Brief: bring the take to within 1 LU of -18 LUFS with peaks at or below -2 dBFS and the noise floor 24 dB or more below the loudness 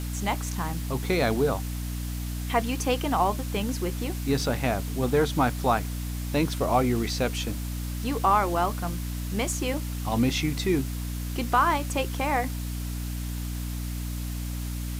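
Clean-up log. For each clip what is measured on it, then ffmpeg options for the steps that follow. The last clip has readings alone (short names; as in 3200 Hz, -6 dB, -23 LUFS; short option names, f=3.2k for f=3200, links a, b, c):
hum 60 Hz; harmonics up to 300 Hz; hum level -29 dBFS; noise floor -32 dBFS; noise floor target -52 dBFS; loudness -27.5 LUFS; peak -10.0 dBFS; loudness target -18.0 LUFS
-> -af "bandreject=f=60:t=h:w=4,bandreject=f=120:t=h:w=4,bandreject=f=180:t=h:w=4,bandreject=f=240:t=h:w=4,bandreject=f=300:t=h:w=4"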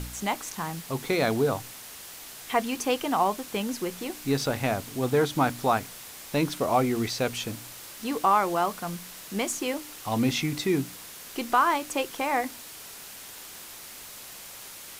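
hum none; noise floor -44 dBFS; noise floor target -52 dBFS
-> -af "afftdn=nr=8:nf=-44"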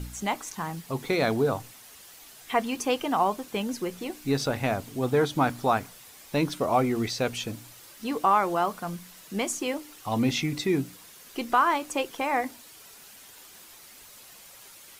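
noise floor -50 dBFS; noise floor target -52 dBFS
-> -af "afftdn=nr=6:nf=-50"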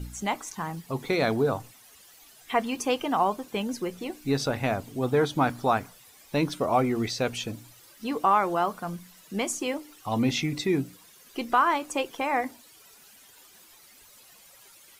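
noise floor -54 dBFS; loudness -27.5 LUFS; peak -10.5 dBFS; loudness target -18.0 LUFS
-> -af "volume=9.5dB,alimiter=limit=-2dB:level=0:latency=1"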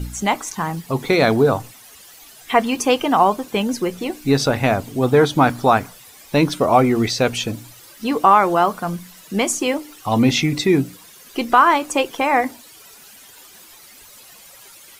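loudness -18.5 LUFS; peak -2.0 dBFS; noise floor -45 dBFS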